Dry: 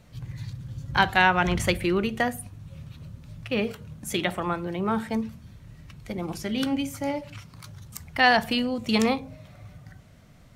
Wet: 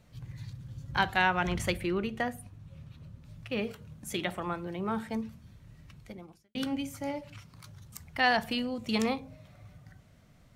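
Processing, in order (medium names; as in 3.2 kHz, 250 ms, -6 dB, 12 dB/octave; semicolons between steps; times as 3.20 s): 1.83–3.25 s: treble shelf 4.9 kHz -6 dB; 5.98–6.55 s: fade out quadratic; trim -6.5 dB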